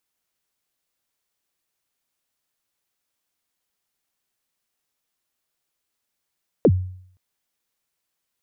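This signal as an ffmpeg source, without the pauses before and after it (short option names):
-f lavfi -i "aevalsrc='0.376*pow(10,-3*t/0.62)*sin(2*PI*(570*0.055/log(92/570)*(exp(log(92/570)*min(t,0.055)/0.055)-1)+92*max(t-0.055,0)))':d=0.52:s=44100"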